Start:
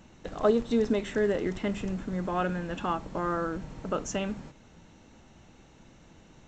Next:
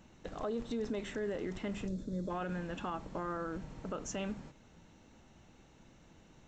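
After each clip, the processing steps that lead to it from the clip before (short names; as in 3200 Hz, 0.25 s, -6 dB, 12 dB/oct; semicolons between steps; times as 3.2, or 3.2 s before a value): spectral gain 1.88–2.3, 630–3300 Hz -15 dB; limiter -23.5 dBFS, peak gain reduction 11.5 dB; gain -5.5 dB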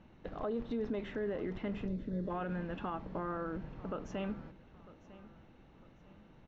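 air absorption 280 m; feedback echo 0.95 s, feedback 37%, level -18.5 dB; gain +1 dB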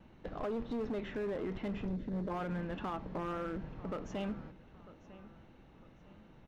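vibrato 1.5 Hz 31 cents; overloaded stage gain 33.5 dB; gain +1 dB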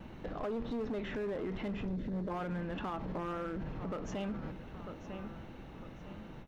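limiter -42.5 dBFS, peak gain reduction 10 dB; ending taper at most 310 dB/s; gain +10 dB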